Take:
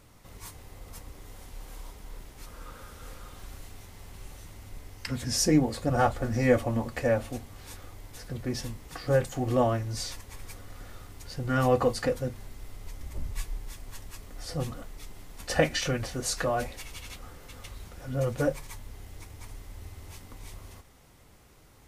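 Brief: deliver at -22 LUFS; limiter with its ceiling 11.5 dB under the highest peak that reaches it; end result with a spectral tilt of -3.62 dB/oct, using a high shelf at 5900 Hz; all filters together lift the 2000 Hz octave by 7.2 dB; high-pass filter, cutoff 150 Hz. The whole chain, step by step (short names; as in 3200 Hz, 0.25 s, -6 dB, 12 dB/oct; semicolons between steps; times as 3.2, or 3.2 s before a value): HPF 150 Hz; bell 2000 Hz +8.5 dB; high shelf 5900 Hz +5 dB; gain +8.5 dB; limiter -7.5 dBFS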